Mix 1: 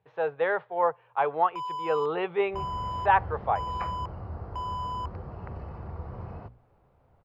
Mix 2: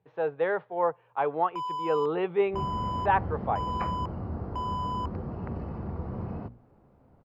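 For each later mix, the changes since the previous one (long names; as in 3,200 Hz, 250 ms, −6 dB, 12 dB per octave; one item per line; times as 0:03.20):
speech −4.0 dB
master: add parametric band 240 Hz +12 dB 1.4 octaves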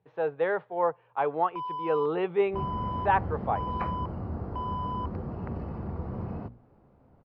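first sound: add high-frequency loss of the air 340 metres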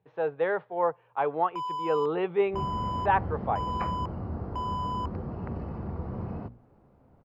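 first sound: remove high-frequency loss of the air 340 metres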